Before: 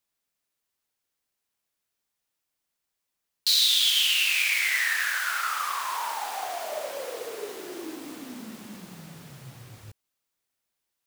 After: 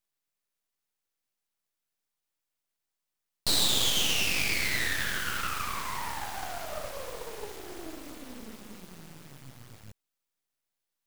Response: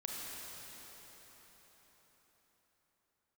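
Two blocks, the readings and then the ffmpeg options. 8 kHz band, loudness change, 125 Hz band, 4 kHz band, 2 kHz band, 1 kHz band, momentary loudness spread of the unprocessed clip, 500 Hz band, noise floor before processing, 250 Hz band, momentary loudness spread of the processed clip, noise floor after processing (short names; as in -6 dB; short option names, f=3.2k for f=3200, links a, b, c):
-1.5 dB, -5.0 dB, n/a, -5.5 dB, -5.5 dB, -5.0 dB, 21 LU, -3.5 dB, -83 dBFS, 0.0 dB, 21 LU, under -85 dBFS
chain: -af "aeval=exprs='max(val(0),0)':c=same"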